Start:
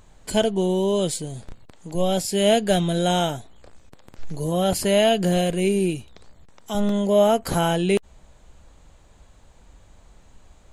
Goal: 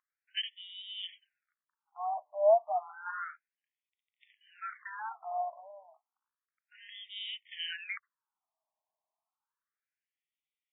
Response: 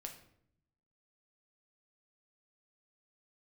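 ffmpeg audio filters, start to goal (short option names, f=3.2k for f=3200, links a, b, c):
-af "aeval=exprs='val(0)+0.0562*sin(2*PI*480*n/s)':c=same,agate=range=-26dB:threshold=-23dB:ratio=16:detection=peak,afftfilt=real='re*between(b*sr/1024,800*pow(2700/800,0.5+0.5*sin(2*PI*0.31*pts/sr))/1.41,800*pow(2700/800,0.5+0.5*sin(2*PI*0.31*pts/sr))*1.41)':imag='im*between(b*sr/1024,800*pow(2700/800,0.5+0.5*sin(2*PI*0.31*pts/sr))/1.41,800*pow(2700/800,0.5+0.5*sin(2*PI*0.31*pts/sr))*1.41)':win_size=1024:overlap=0.75,volume=-3dB"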